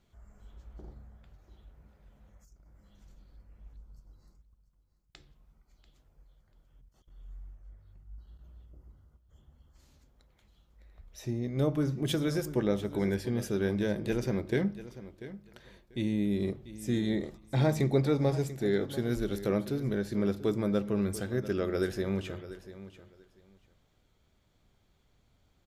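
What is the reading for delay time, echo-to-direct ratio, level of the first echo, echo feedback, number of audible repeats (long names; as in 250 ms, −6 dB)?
690 ms, −15.0 dB, −15.0 dB, 18%, 2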